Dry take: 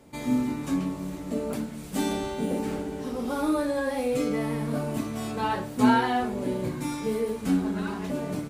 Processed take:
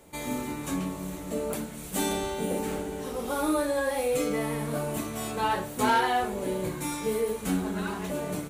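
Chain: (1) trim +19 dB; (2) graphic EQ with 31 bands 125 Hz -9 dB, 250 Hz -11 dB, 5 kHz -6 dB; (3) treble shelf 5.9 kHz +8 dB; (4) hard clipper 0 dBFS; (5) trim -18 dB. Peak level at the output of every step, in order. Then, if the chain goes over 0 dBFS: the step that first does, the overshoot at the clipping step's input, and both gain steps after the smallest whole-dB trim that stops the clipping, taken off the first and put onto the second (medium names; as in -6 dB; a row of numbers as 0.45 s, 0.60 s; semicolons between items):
+9.5 dBFS, +5.5 dBFS, +6.0 dBFS, 0.0 dBFS, -18.0 dBFS; step 1, 6.0 dB; step 1 +13 dB, step 5 -12 dB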